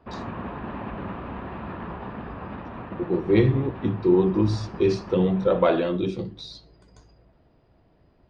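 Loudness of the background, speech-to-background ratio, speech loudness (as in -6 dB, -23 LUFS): -37.0 LUFS, 14.0 dB, -23.0 LUFS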